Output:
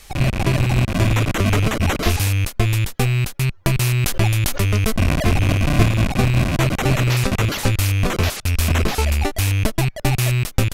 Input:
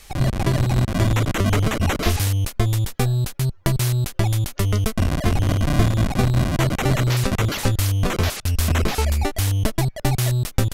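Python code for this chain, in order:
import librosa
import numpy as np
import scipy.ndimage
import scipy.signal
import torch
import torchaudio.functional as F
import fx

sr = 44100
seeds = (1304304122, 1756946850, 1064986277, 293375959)

y = fx.rattle_buzz(x, sr, strikes_db=-21.0, level_db=-18.0)
y = fx.sustainer(y, sr, db_per_s=33.0, at=(3.71, 5.83))
y = F.gain(torch.from_numpy(y), 1.5).numpy()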